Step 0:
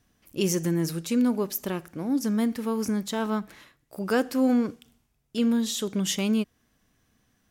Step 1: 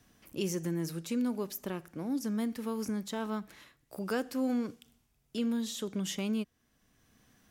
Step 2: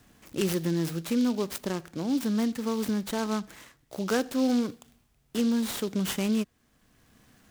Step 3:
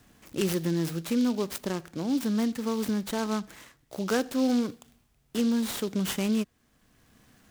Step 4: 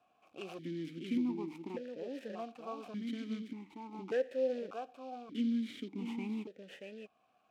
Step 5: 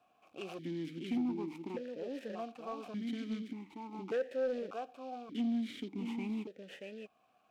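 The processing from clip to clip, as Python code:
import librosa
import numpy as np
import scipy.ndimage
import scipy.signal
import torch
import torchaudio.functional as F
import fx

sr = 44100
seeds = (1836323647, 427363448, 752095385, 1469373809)

y1 = fx.band_squash(x, sr, depth_pct=40)
y1 = y1 * librosa.db_to_amplitude(-8.0)
y2 = fx.noise_mod_delay(y1, sr, seeds[0], noise_hz=4100.0, depth_ms=0.048)
y2 = y2 * librosa.db_to_amplitude(6.0)
y3 = y2
y4 = y3 + 10.0 ** (-5.5 / 20.0) * np.pad(y3, (int(631 * sr / 1000.0), 0))[:len(y3)]
y4 = fx.vowel_held(y4, sr, hz=1.7)
y4 = y4 * librosa.db_to_amplitude(1.0)
y5 = 10.0 ** (-29.0 / 20.0) * np.tanh(y4 / 10.0 ** (-29.0 / 20.0))
y5 = y5 * librosa.db_to_amplitude(1.5)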